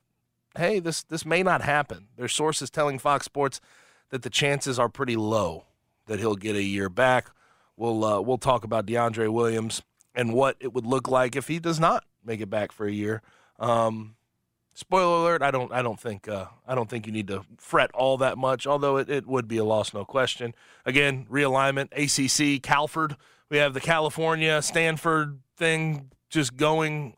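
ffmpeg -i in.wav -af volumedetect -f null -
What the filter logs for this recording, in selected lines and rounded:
mean_volume: -25.9 dB
max_volume: -5.1 dB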